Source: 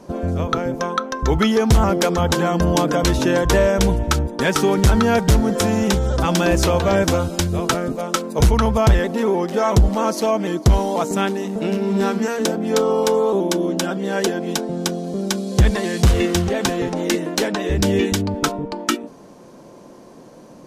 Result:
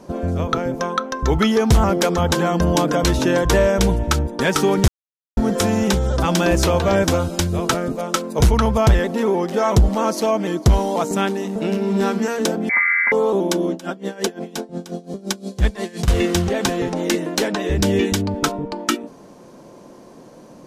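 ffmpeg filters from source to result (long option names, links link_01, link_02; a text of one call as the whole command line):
ffmpeg -i in.wav -filter_complex "[0:a]asettb=1/sr,asplit=3[link_01][link_02][link_03];[link_01]atrim=end=12.694[link_04];[link_02]atrim=start=12.69:end=13.12,asetpts=PTS-STARTPTS,afade=type=in:duration=0.004:curve=qsin,afade=type=out:start_time=0.426:duration=0.004:curve=qsin,lowpass=frequency=2100:width_type=q:width=0.5098,lowpass=frequency=2100:width_type=q:width=0.6013,lowpass=frequency=2100:width_type=q:width=0.9,lowpass=frequency=2100:width_type=q:width=2.563,afreqshift=-2500[link_05];[link_03]atrim=start=13.116[link_06];[link_04][link_05]acrossfade=duration=0.004:curve1=hsin:curve2=qsin[link_07];[link_07][link_06]acrossfade=duration=0.004:curve1=qsin:curve2=hsin,asettb=1/sr,asplit=3[link_08][link_09][link_10];[link_08]atrim=end=13.724[link_11];[link_09]atrim=start=13.72:end=16.08,asetpts=PTS-STARTPTS,afade=type=in:duration=0.004:curve=qsin,afade=type=out:start_time=2.356:duration=0.004:curve=qsin,aeval=exprs='val(0)*pow(10,-19*(0.5-0.5*cos(2*PI*5.7*n/s))/20)':channel_layout=same[link_12];[link_10]atrim=start=16.076[link_13];[link_11][link_12]acrossfade=duration=0.004:curve1=hsin:curve2=qsin[link_14];[link_14][link_13]acrossfade=duration=0.004:curve1=qsin:curve2=hsin,asplit=3[link_15][link_16][link_17];[link_15]atrim=end=4.88,asetpts=PTS-STARTPTS,afade=type=out:start_time=4.876:duration=0.004:curve=hsin[link_18];[link_16]atrim=start=4.88:end=5.37,asetpts=PTS-STARTPTS,volume=0[link_19];[link_17]atrim=start=5.37,asetpts=PTS-STARTPTS,afade=type=in:duration=0.004:curve=hsin[link_20];[link_18][link_19][link_20]concat=n=3:v=0:a=1" out.wav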